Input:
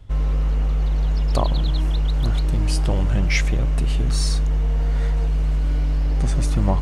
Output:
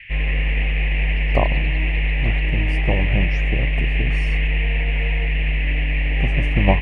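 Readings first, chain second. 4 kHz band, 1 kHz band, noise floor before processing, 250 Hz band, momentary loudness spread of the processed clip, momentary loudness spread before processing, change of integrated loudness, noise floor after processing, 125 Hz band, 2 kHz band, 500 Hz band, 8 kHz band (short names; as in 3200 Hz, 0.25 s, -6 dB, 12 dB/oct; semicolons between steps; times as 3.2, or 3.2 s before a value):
+2.0 dB, +2.5 dB, -19 dBFS, +1.0 dB, 2 LU, 2 LU, +1.0 dB, -19 dBFS, 0.0 dB, +11.5 dB, +3.5 dB, under -20 dB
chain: EQ curve 240 Hz 0 dB, 750 Hz +3 dB, 3200 Hz -22 dB; band noise 1800–2800 Hz -29 dBFS; upward expander 2.5:1, over -26 dBFS; gain +5 dB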